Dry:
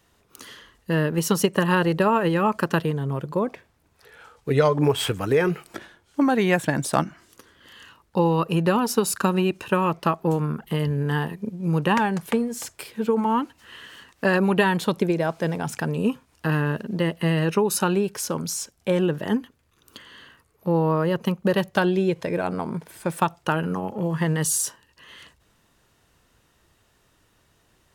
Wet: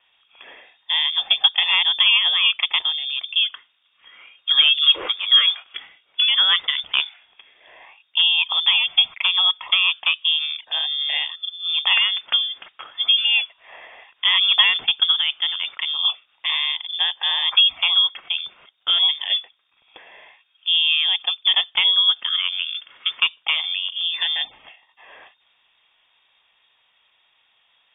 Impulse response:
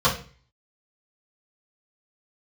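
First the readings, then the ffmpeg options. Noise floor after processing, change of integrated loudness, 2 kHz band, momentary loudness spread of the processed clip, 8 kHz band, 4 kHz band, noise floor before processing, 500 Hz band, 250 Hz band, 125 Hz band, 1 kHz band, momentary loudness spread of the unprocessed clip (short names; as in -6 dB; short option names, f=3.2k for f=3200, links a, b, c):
-64 dBFS, +6.0 dB, +6.0 dB, 12 LU, under -40 dB, +22.5 dB, -64 dBFS, under -20 dB, under -30 dB, under -35 dB, -8.0 dB, 10 LU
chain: -af "asoftclip=type=hard:threshold=-11dB,equalizer=f=100:t=o:w=0.67:g=-9,equalizer=f=400:t=o:w=0.67:g=9,equalizer=f=1k:t=o:w=0.67:g=7,equalizer=f=2.5k:t=o:w=0.67:g=6,lowpass=f=3.1k:t=q:w=0.5098,lowpass=f=3.1k:t=q:w=0.6013,lowpass=f=3.1k:t=q:w=0.9,lowpass=f=3.1k:t=q:w=2.563,afreqshift=-3700,volume=-2dB"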